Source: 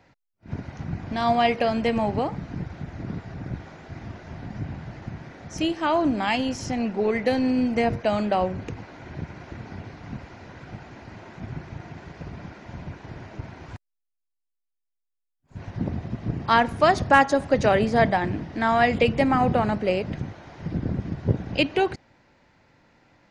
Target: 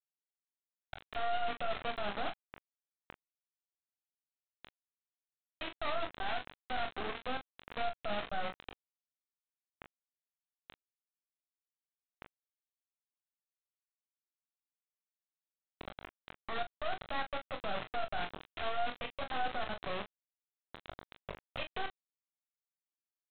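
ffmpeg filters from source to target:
ffmpeg -i in.wav -filter_complex "[0:a]highpass=frequency=160:width=0.5412,highpass=frequency=160:width=1.3066,acompressor=threshold=-25dB:ratio=20,asplit=3[link_01][link_02][link_03];[link_01]bandpass=frequency=730:width_type=q:width=8,volume=0dB[link_04];[link_02]bandpass=frequency=1090:width_type=q:width=8,volume=-6dB[link_05];[link_03]bandpass=frequency=2440:width_type=q:width=8,volume=-9dB[link_06];[link_04][link_05][link_06]amix=inputs=3:normalize=0,aresample=8000,acrusher=bits=4:dc=4:mix=0:aa=0.000001,aresample=44100,alimiter=level_in=9.5dB:limit=-24dB:level=0:latency=1:release=13,volume=-9.5dB,asplit=2[link_07][link_08];[link_08]aecho=0:1:24|40:0.422|0.355[link_09];[link_07][link_09]amix=inputs=2:normalize=0,volume=6dB" out.wav

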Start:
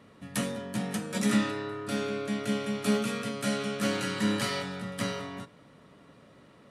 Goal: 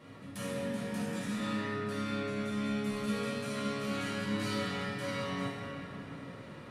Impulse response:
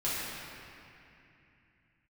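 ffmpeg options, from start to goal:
-filter_complex "[0:a]areverse,acompressor=threshold=-41dB:ratio=5,areverse,asoftclip=type=tanh:threshold=-33.5dB[link_01];[1:a]atrim=start_sample=2205[link_02];[link_01][link_02]afir=irnorm=-1:irlink=0"

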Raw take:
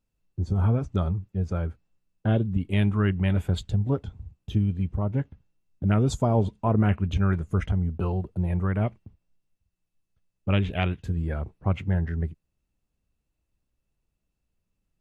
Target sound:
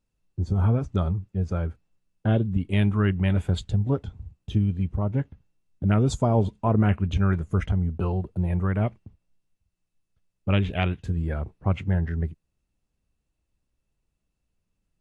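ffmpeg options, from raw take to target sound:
ffmpeg -i in.wav -af "volume=1dB" -ar 24000 -c:a aac -b:a 96k out.aac

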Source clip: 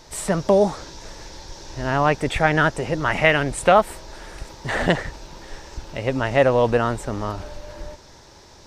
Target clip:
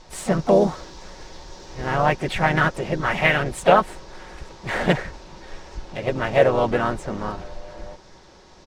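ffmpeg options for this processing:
ffmpeg -i in.wav -filter_complex "[0:a]aecho=1:1:5.4:0.48,adynamicsmooth=sensitivity=6:basefreq=5900,asplit=4[link_01][link_02][link_03][link_04];[link_02]asetrate=37084,aresample=44100,atempo=1.18921,volume=-8dB[link_05];[link_03]asetrate=52444,aresample=44100,atempo=0.840896,volume=-9dB[link_06];[link_04]asetrate=58866,aresample=44100,atempo=0.749154,volume=-16dB[link_07];[link_01][link_05][link_06][link_07]amix=inputs=4:normalize=0,volume=-3dB" out.wav

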